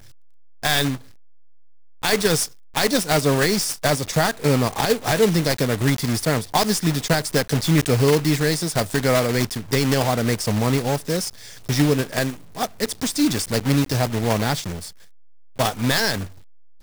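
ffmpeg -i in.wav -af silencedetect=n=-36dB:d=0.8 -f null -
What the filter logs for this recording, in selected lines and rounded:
silence_start: 1.02
silence_end: 2.03 | silence_duration: 1.01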